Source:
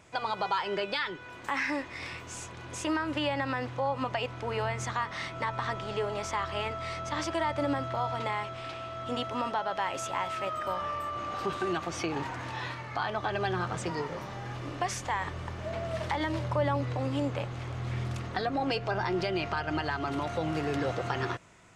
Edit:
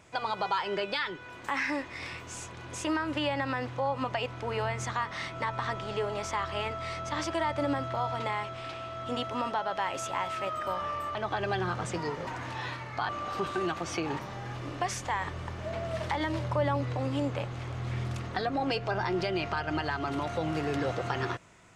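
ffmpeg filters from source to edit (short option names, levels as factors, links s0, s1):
-filter_complex "[0:a]asplit=5[s0][s1][s2][s3][s4];[s0]atrim=end=11.152[s5];[s1]atrim=start=13.068:end=14.192[s6];[s2]atrim=start=12.248:end=13.072[s7];[s3]atrim=start=11.148:end=12.252[s8];[s4]atrim=start=14.188[s9];[s5][s6]acrossfade=d=0.004:c1=hsin:c2=hsin[s10];[s10][s7]acrossfade=d=0.004:c1=hsin:c2=hsin[s11];[s11][s8]acrossfade=d=0.004:c1=hsin:c2=hsin[s12];[s12][s9]acrossfade=d=0.004:c1=hsin:c2=hsin"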